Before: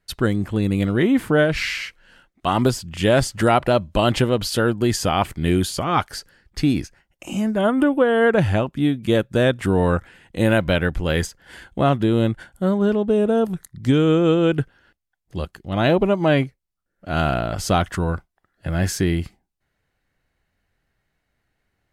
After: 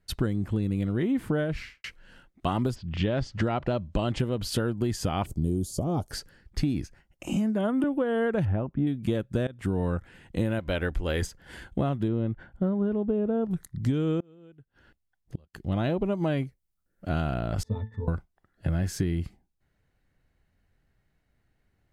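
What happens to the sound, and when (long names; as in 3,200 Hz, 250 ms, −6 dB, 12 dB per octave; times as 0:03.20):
0:01.41–0:01.84: fade out and dull
0:02.74–0:04.18: low-pass filter 4,100 Hz → 9,200 Hz 24 dB per octave
0:05.26–0:06.11: drawn EQ curve 630 Hz 0 dB, 1,900 Hz −28 dB, 6,400 Hz +2 dB
0:07.36–0:07.84: Butterworth high-pass 150 Hz
0:08.45–0:08.87: low-pass filter 1,500 Hz
0:09.47–0:09.87: fade in, from −20.5 dB
0:10.59–0:11.22: parametric band 140 Hz −12 dB 1.4 octaves
0:12.08–0:13.51: Bessel low-pass filter 1,900 Hz
0:14.20–0:15.54: gate with flip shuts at −24 dBFS, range −34 dB
0:16.12–0:17.09: high-shelf EQ 7,000 Hz +8.5 dB
0:17.63–0:18.08: resonances in every octave A, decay 0.19 s
whole clip: low-shelf EQ 390 Hz +8.5 dB; downward compressor 6 to 1, threshold −19 dBFS; level −4.5 dB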